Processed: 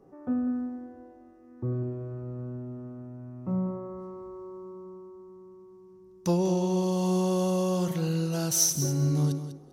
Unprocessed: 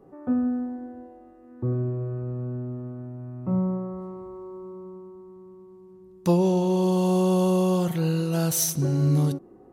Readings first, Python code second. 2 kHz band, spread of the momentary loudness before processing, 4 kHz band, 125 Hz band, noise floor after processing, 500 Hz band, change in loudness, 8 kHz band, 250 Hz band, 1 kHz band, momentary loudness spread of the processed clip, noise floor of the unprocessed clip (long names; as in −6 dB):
−4.0 dB, 18 LU, +1.0 dB, −4.5 dB, −53 dBFS, −4.5 dB, −3.5 dB, +2.0 dB, −4.5 dB, −4.5 dB, 17 LU, −50 dBFS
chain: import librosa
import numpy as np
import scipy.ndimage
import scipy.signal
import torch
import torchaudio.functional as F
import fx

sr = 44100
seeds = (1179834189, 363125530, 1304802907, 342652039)

p1 = fx.peak_eq(x, sr, hz=5700.0, db=9.5, octaves=0.51)
p2 = 10.0 ** (-18.0 / 20.0) * np.tanh(p1 / 10.0 ** (-18.0 / 20.0))
p3 = p1 + (p2 * 10.0 ** (-10.0 / 20.0))
p4 = fx.echo_feedback(p3, sr, ms=197, feedback_pct=16, wet_db=-11)
y = p4 * 10.0 ** (-6.5 / 20.0)